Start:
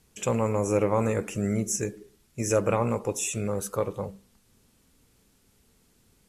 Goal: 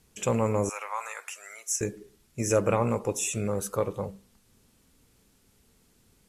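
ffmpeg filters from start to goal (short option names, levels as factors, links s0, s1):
-filter_complex "[0:a]asettb=1/sr,asplit=3[s0][s1][s2];[s0]atrim=end=0.694[s3];[s1]atrim=start=0.69:end=1.81,asetpts=PTS-STARTPTS,afade=t=in:d=0.004:c=qsin,afade=t=out:st=1.116:d=0.004:c=qsin,highpass=f=920:w=0.5412,highpass=f=920:w=1.3066[s4];[s2]atrim=start=1.806[s5];[s3][s4]acrossfade=d=0.004:c1=hsin:c2=qsin[s6];[s6][s5]acrossfade=d=0.004:c1=qsin:c2=hsin"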